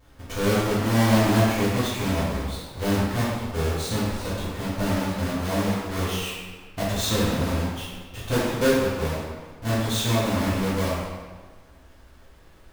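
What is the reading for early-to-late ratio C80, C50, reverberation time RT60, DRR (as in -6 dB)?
1.0 dB, -1.5 dB, 1.4 s, -9.5 dB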